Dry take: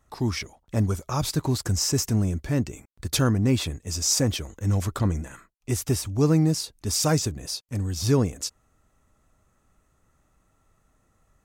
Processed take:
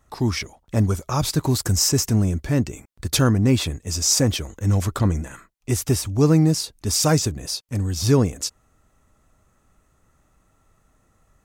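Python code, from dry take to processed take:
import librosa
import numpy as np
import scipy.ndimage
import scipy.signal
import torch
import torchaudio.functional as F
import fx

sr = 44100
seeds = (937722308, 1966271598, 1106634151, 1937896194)

y = fx.high_shelf(x, sr, hz=9900.0, db=8.5, at=(1.41, 1.89))
y = y * 10.0 ** (4.0 / 20.0)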